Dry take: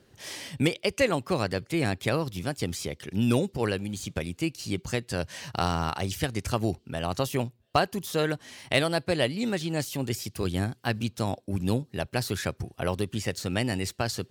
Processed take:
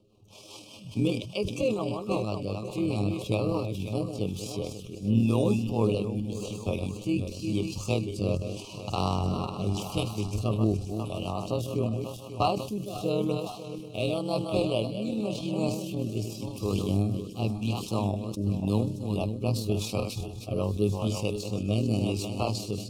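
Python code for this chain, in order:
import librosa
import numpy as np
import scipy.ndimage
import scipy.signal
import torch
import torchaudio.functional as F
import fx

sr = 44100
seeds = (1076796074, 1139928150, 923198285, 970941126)

y = fx.reverse_delay_fb(x, sr, ms=169, feedback_pct=56, wet_db=-7.0)
y = scipy.signal.sosfilt(scipy.signal.ellip(3, 1.0, 40, [1200.0, 2500.0], 'bandstop', fs=sr, output='sos'), y)
y = fx.high_shelf(y, sr, hz=3400.0, db=-8.0)
y = fx.rider(y, sr, range_db=10, speed_s=2.0)
y = fx.stretch_grains(y, sr, factor=1.6, grain_ms=51.0)
y = fx.echo_wet_highpass(y, sr, ms=1081, feedback_pct=44, hz=5000.0, wet_db=-11)
y = fx.rotary_switch(y, sr, hz=5.0, then_hz=0.9, switch_at_s=3.33)
y = fx.sustainer(y, sr, db_per_s=77.0)
y = F.gain(torch.from_numpy(y), 1.5).numpy()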